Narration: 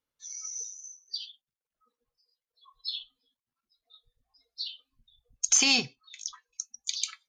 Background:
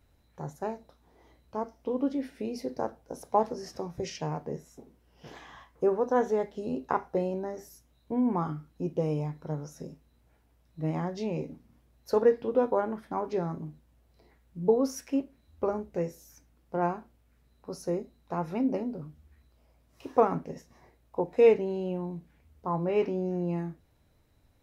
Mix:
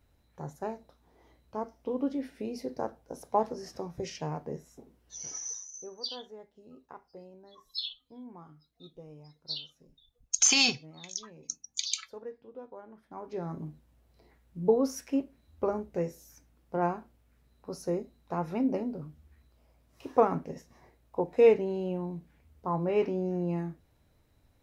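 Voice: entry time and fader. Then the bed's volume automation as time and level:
4.90 s, -0.5 dB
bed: 5.17 s -2 dB
5.59 s -20 dB
12.82 s -20 dB
13.61 s -0.5 dB

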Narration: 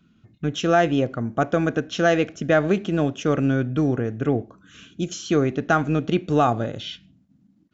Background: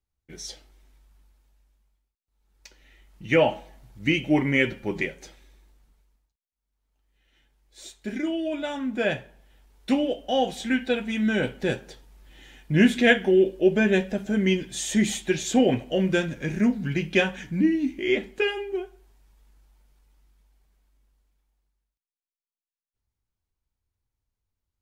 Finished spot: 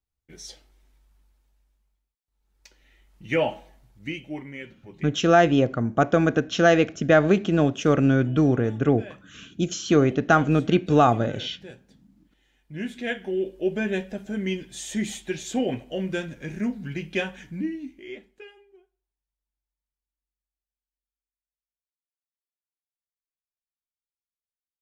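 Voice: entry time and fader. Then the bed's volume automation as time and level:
4.60 s, +1.5 dB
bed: 3.68 s -3.5 dB
4.63 s -17.5 dB
12.53 s -17.5 dB
13.60 s -5.5 dB
17.50 s -5.5 dB
19.13 s -32 dB

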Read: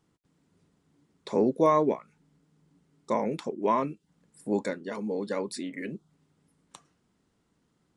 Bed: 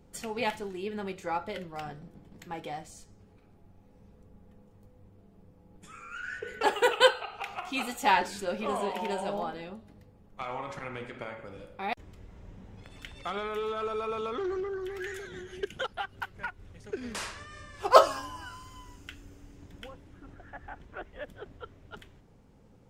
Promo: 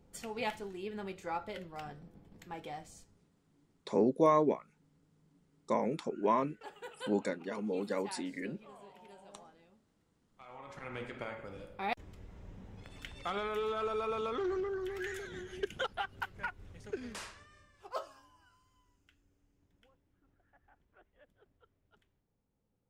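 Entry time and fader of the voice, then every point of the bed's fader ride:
2.60 s, -4.0 dB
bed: 2.99 s -5.5 dB
3.31 s -23 dB
10.23 s -23 dB
10.99 s -2 dB
16.87 s -2 dB
17.99 s -23 dB

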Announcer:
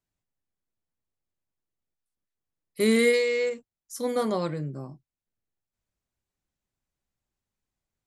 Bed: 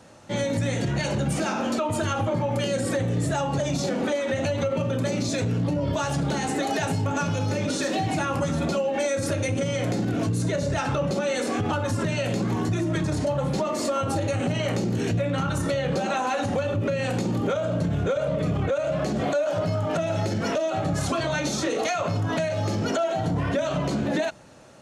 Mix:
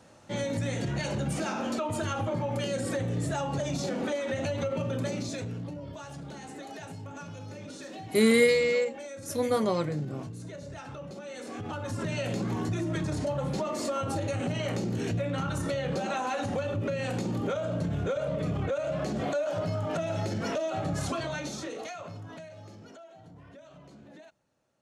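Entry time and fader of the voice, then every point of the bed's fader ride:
5.35 s, 0.0 dB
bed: 5.04 s -5.5 dB
5.94 s -16.5 dB
11.24 s -16.5 dB
12.15 s -5.5 dB
21.06 s -5.5 dB
23.09 s -26 dB

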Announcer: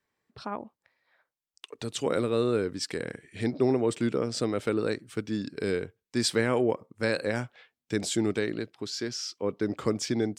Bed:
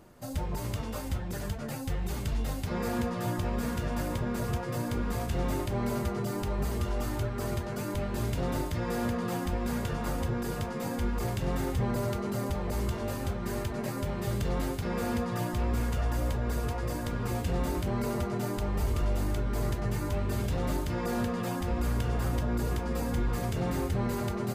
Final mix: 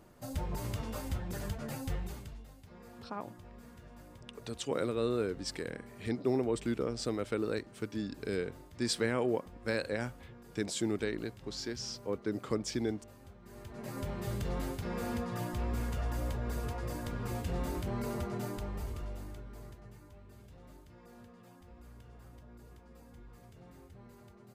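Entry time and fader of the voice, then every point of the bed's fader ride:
2.65 s, -6.0 dB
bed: 1.95 s -3.5 dB
2.48 s -21.5 dB
13.42 s -21.5 dB
13.98 s -5.5 dB
18.42 s -5.5 dB
20.14 s -24.5 dB

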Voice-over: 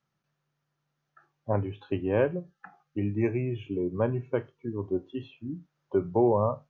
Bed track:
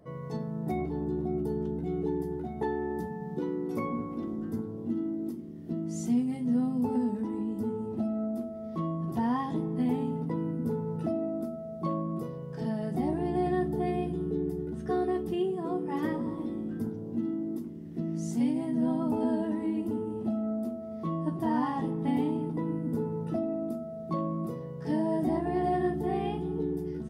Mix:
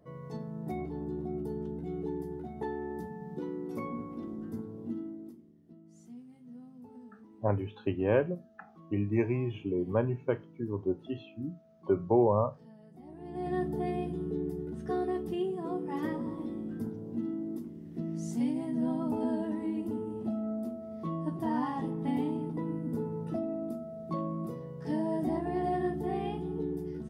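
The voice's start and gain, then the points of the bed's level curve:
5.95 s, -1.5 dB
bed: 4.91 s -5 dB
5.80 s -22 dB
13.02 s -22 dB
13.56 s -3 dB

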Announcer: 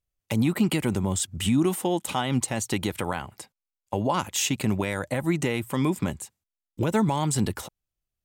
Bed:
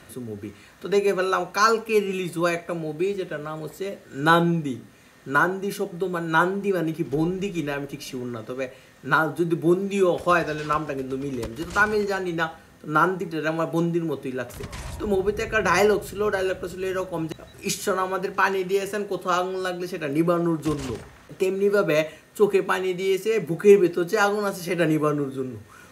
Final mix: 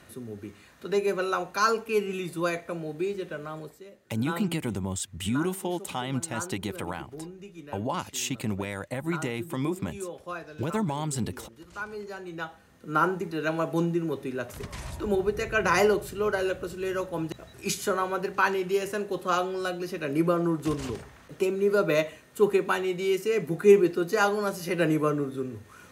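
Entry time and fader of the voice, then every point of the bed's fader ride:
3.80 s, -5.5 dB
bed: 3.59 s -5 dB
3.84 s -17 dB
11.76 s -17 dB
13.14 s -3 dB

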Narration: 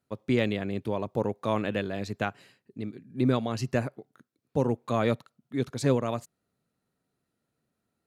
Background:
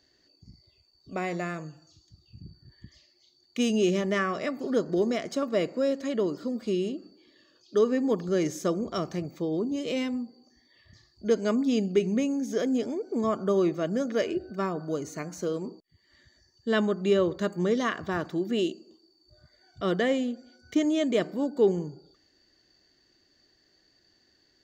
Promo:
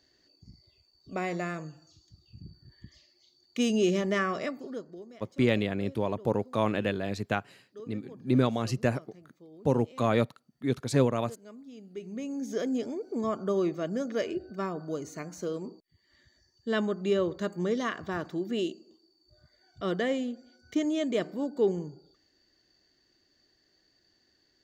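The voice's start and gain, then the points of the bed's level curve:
5.10 s, +0.5 dB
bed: 4.42 s -1 dB
5.07 s -22.5 dB
11.78 s -22.5 dB
12.44 s -3.5 dB

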